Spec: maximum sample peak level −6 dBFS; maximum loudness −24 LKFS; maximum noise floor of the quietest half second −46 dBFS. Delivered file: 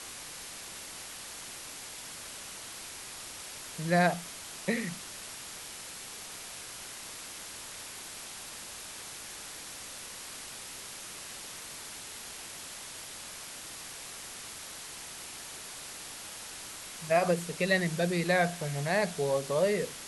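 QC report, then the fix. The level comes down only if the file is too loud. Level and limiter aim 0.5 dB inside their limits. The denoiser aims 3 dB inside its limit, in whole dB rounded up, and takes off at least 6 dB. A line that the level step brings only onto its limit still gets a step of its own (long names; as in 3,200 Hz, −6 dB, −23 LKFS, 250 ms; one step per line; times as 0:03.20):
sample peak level −12.5 dBFS: in spec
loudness −35.0 LKFS: in spec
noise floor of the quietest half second −44 dBFS: out of spec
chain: broadband denoise 6 dB, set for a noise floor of −44 dBFS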